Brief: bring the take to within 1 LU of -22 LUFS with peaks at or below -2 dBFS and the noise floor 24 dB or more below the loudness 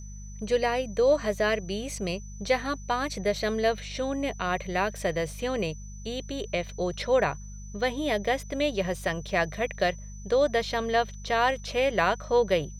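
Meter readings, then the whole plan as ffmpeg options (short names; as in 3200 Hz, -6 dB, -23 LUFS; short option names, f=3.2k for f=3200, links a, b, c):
hum 50 Hz; harmonics up to 200 Hz; hum level -38 dBFS; steady tone 6000 Hz; tone level -49 dBFS; loudness -28.0 LUFS; peak -10.5 dBFS; loudness target -22.0 LUFS
-> -af "bandreject=f=50:t=h:w=4,bandreject=f=100:t=h:w=4,bandreject=f=150:t=h:w=4,bandreject=f=200:t=h:w=4"
-af "bandreject=f=6k:w=30"
-af "volume=6dB"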